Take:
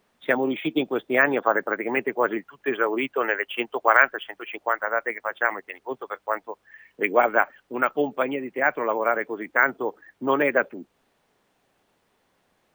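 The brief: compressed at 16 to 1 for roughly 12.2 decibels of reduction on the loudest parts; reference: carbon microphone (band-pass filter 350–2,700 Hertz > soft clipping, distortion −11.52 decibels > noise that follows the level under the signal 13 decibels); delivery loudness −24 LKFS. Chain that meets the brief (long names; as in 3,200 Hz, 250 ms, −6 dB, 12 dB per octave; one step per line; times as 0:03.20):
downward compressor 16 to 1, threshold −24 dBFS
band-pass filter 350–2,700 Hz
soft clipping −25 dBFS
noise that follows the level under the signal 13 dB
level +11 dB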